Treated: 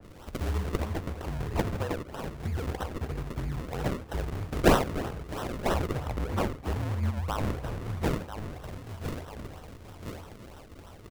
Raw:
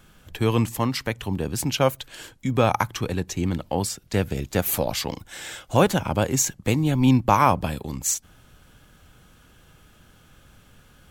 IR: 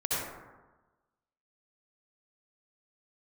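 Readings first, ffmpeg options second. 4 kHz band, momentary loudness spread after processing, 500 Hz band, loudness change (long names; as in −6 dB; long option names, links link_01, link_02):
−10.0 dB, 14 LU, −7.0 dB, −9.0 dB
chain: -filter_complex "[0:a]equalizer=frequency=125:width_type=o:width=1:gain=10,equalizer=frequency=250:width_type=o:width=1:gain=-5,equalizer=frequency=4000:width_type=o:width=1:gain=5,equalizer=frequency=8000:width_type=o:width=1:gain=5,equalizer=frequency=16000:width_type=o:width=1:gain=7,aecho=1:1:996|1992|2988:0.158|0.0602|0.0229,acompressor=threshold=-31dB:ratio=2.5,aexciter=amount=4.9:drive=5.2:freq=9900,afreqshift=-40,asplit=2[link_01][link_02];[link_02]adelay=47,volume=-12dB[link_03];[link_01][link_03]amix=inputs=2:normalize=0,asplit=2[link_04][link_05];[1:a]atrim=start_sample=2205,atrim=end_sample=4410[link_06];[link_05][link_06]afir=irnorm=-1:irlink=0,volume=-10dB[link_07];[link_04][link_07]amix=inputs=2:normalize=0,acrusher=samples=38:mix=1:aa=0.000001:lfo=1:lforange=38:lforate=3.1,adynamicequalizer=threshold=0.00562:dfrequency=2600:dqfactor=0.7:tfrequency=2600:tqfactor=0.7:attack=5:release=100:ratio=0.375:range=4:mode=cutabove:tftype=highshelf,volume=-5.5dB"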